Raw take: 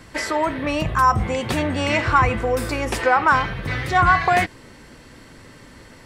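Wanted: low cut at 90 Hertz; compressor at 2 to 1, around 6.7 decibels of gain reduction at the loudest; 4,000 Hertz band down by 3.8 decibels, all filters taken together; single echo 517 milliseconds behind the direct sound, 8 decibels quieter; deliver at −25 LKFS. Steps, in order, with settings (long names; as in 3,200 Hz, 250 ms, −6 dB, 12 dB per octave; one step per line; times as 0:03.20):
high-pass filter 90 Hz
parametric band 4,000 Hz −5.5 dB
downward compressor 2 to 1, threshold −24 dBFS
single-tap delay 517 ms −8 dB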